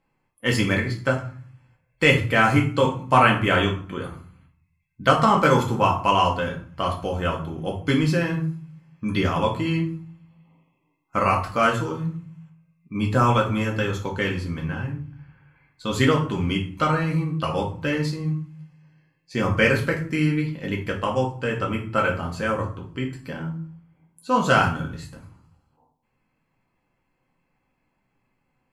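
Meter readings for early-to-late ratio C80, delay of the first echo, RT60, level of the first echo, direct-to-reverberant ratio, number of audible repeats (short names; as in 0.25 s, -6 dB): 14.0 dB, none, 0.45 s, none, -1.5 dB, none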